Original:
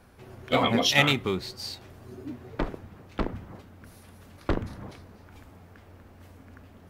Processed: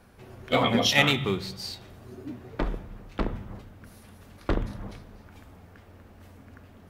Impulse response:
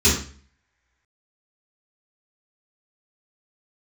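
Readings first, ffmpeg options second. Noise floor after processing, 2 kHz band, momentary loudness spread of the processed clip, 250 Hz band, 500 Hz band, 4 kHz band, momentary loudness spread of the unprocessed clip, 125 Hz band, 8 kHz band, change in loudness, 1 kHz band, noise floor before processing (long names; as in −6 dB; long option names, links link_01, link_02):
−52 dBFS, +0.5 dB, 22 LU, +0.5 dB, +0.5 dB, +0.5 dB, 23 LU, +1.0 dB, 0.0 dB, 0.0 dB, 0.0 dB, −53 dBFS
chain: -filter_complex "[0:a]asplit=2[link_01][link_02];[1:a]atrim=start_sample=2205,asetrate=22491,aresample=44100[link_03];[link_02][link_03]afir=irnorm=-1:irlink=0,volume=-36.5dB[link_04];[link_01][link_04]amix=inputs=2:normalize=0"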